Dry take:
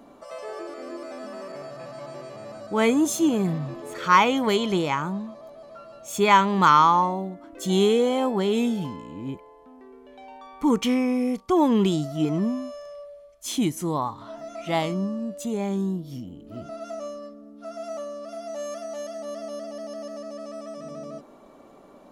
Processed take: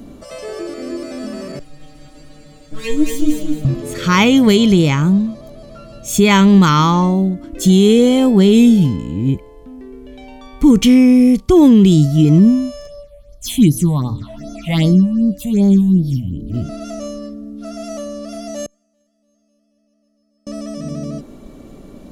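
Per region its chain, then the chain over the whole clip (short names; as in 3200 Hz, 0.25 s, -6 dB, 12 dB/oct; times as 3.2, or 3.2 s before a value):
1.59–3.65 minimum comb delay 3.7 ms + metallic resonator 150 Hz, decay 0.3 s, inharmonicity 0.002 + feedback echo 0.22 s, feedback 29%, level -5 dB
12.87–16.54 notches 60/120 Hz + phaser stages 6, 2.6 Hz, lowest notch 340–2600 Hz
18.66–20.47 gate -30 dBFS, range -22 dB + bell 170 Hz +4 dB 2.3 oct + resonator 200 Hz, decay 0.88 s, mix 90%
whole clip: passive tone stack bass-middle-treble 10-0-1; maximiser +35 dB; gain -1.5 dB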